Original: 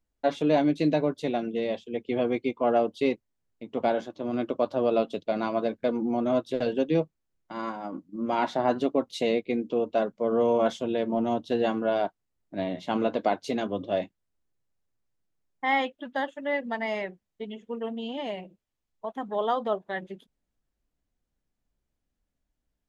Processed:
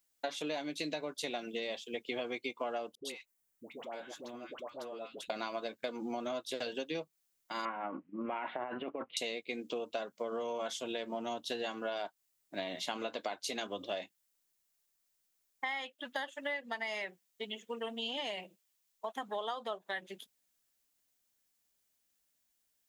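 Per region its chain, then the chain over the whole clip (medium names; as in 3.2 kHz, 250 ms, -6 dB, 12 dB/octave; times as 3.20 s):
2.95–5.30 s: peaking EQ 4.3 kHz -6.5 dB 1.3 oct + compression 8:1, threshold -36 dBFS + phase dispersion highs, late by 102 ms, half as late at 900 Hz
7.65–9.17 s: steep low-pass 2.7 kHz 48 dB/octave + compressor with a negative ratio -29 dBFS
whole clip: tilt EQ +4.5 dB/octave; compression 12:1, threshold -34 dBFS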